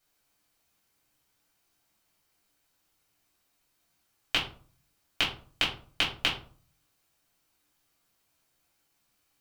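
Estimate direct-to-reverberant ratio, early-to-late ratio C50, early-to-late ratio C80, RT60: -6.5 dB, 7.5 dB, 12.5 dB, 0.45 s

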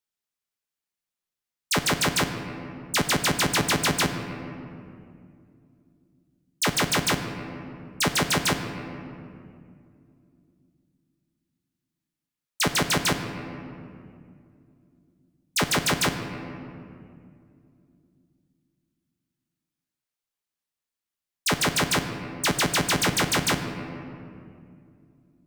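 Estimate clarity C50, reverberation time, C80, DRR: 7.5 dB, 2.4 s, 8.5 dB, 6.0 dB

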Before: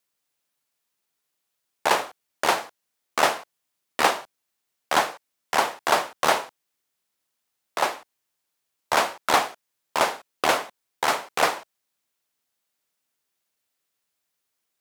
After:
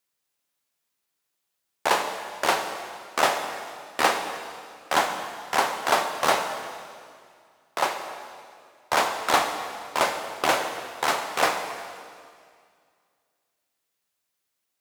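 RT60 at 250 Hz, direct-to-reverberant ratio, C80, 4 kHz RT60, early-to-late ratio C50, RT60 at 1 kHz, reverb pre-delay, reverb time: 2.3 s, 5.0 dB, 7.5 dB, 2.0 s, 7.0 dB, 2.1 s, 3 ms, 2.1 s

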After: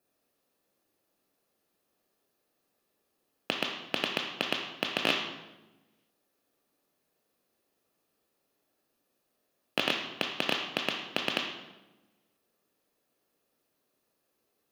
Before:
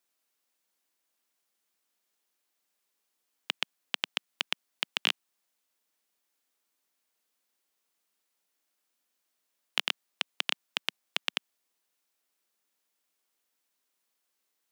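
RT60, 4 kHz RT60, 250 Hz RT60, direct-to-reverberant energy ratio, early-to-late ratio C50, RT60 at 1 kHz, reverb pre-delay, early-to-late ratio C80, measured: 1.1 s, 0.75 s, 1.4 s, 3.5 dB, 6.0 dB, 1.0 s, 3 ms, 8.5 dB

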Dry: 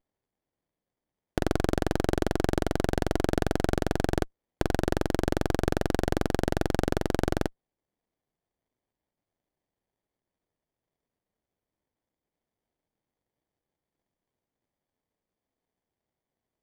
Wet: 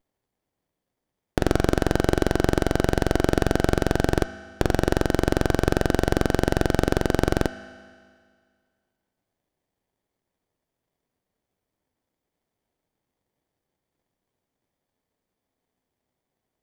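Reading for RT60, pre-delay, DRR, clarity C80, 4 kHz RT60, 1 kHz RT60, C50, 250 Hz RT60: 1.9 s, 4 ms, 10.5 dB, 13.0 dB, 1.9 s, 1.9 s, 12.0 dB, 1.9 s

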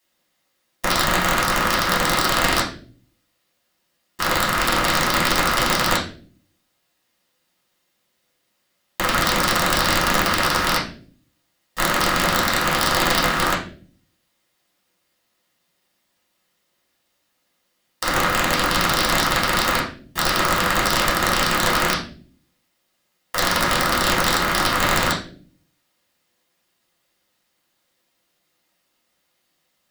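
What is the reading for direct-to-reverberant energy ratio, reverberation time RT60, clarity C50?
-7.0 dB, 0.45 s, 8.0 dB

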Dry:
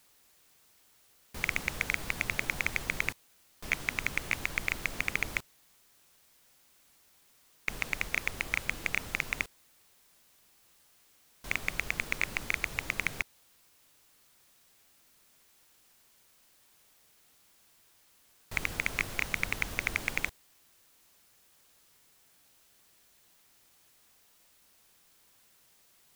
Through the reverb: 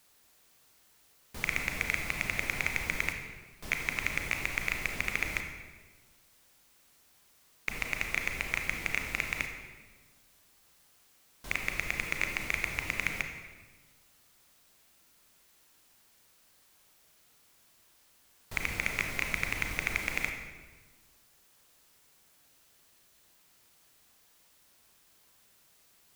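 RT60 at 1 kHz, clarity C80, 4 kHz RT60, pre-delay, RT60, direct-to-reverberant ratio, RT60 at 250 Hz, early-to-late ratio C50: 1.3 s, 7.5 dB, 1.0 s, 29 ms, 1.4 s, 4.0 dB, 1.6 s, 5.5 dB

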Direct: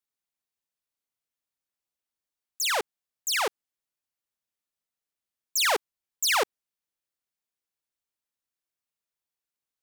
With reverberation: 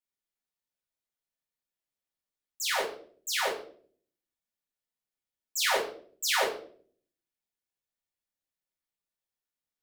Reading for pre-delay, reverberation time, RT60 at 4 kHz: 4 ms, 0.55 s, 0.40 s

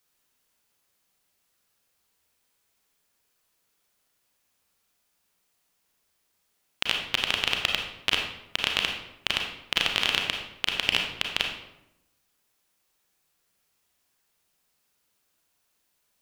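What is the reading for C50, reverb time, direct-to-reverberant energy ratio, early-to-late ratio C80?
4.0 dB, 0.85 s, 1.5 dB, 7.0 dB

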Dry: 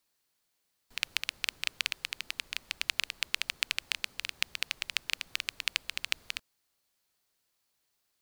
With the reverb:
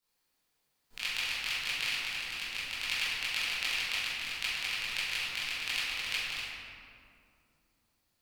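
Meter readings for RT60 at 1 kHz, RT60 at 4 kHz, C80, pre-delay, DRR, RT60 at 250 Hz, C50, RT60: 2.3 s, 1.3 s, -1.0 dB, 18 ms, -12.5 dB, 3.6 s, -3.5 dB, 2.5 s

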